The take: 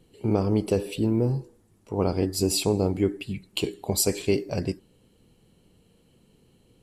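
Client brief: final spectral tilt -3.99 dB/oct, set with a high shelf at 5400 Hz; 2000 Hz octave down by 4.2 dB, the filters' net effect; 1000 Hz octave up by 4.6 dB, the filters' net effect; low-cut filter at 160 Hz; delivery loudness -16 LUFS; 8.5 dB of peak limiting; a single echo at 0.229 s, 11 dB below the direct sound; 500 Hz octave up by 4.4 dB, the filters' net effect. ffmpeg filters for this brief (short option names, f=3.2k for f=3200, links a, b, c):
-af "highpass=160,equalizer=f=500:t=o:g=5,equalizer=f=1k:t=o:g=5.5,equalizer=f=2k:t=o:g=-9,highshelf=f=5.4k:g=6.5,alimiter=limit=-14.5dB:level=0:latency=1,aecho=1:1:229:0.282,volume=11dB"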